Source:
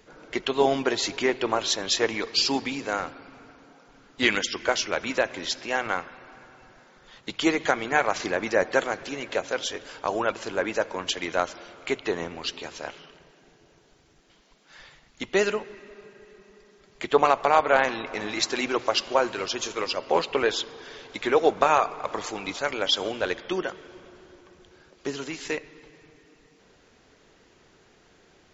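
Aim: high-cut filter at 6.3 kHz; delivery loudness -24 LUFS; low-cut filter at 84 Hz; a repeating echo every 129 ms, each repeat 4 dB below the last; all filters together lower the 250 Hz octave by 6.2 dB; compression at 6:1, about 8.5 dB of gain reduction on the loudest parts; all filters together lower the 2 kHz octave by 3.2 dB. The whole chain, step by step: high-pass 84 Hz; low-pass 6.3 kHz; peaking EQ 250 Hz -9 dB; peaking EQ 2 kHz -4 dB; compression 6:1, threshold -25 dBFS; feedback delay 129 ms, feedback 63%, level -4 dB; trim +6.5 dB

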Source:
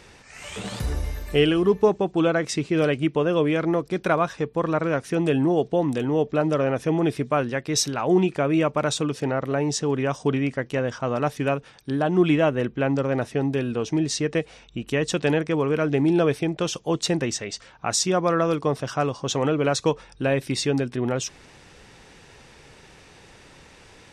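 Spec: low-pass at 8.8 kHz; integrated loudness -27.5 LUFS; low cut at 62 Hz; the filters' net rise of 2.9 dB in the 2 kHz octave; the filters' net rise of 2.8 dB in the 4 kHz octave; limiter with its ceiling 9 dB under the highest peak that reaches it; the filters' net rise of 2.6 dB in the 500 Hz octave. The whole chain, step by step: high-pass 62 Hz; low-pass 8.8 kHz; peaking EQ 500 Hz +3 dB; peaking EQ 2 kHz +3 dB; peaking EQ 4 kHz +3 dB; trim -3.5 dB; peak limiter -16 dBFS

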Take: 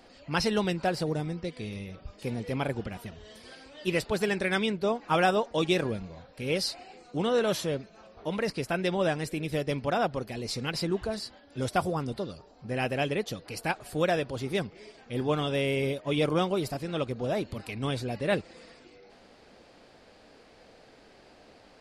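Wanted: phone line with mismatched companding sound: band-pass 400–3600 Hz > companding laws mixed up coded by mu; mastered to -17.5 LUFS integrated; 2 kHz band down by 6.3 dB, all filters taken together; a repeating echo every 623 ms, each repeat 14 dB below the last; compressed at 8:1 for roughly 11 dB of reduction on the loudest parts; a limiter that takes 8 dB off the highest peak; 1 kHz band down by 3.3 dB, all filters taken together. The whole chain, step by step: peaking EQ 1 kHz -3 dB; peaking EQ 2 kHz -7 dB; compression 8:1, threshold -34 dBFS; peak limiter -32 dBFS; band-pass 400–3600 Hz; feedback delay 623 ms, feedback 20%, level -14 dB; companding laws mixed up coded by mu; trim +25.5 dB

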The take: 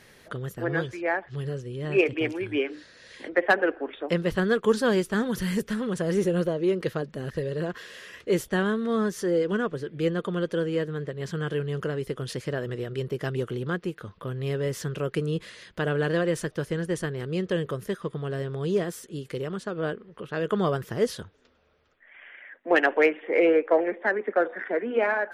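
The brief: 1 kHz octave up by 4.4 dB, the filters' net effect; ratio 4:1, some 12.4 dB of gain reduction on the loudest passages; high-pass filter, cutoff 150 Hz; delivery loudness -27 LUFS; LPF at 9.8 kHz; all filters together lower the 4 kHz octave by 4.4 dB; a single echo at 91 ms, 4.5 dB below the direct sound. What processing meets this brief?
high-pass 150 Hz; low-pass 9.8 kHz; peaking EQ 1 kHz +6.5 dB; peaking EQ 4 kHz -7 dB; compression 4:1, threshold -30 dBFS; delay 91 ms -4.5 dB; trim +6 dB

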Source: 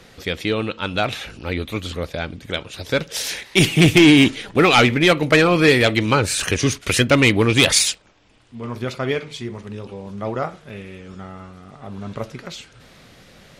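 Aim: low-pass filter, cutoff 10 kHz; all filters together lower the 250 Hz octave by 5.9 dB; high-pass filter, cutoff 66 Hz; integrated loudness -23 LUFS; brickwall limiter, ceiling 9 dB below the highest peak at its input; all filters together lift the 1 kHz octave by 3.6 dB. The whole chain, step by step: high-pass 66 Hz; low-pass 10 kHz; peaking EQ 250 Hz -9 dB; peaking EQ 1 kHz +5.5 dB; trim -1 dB; peak limiter -10.5 dBFS

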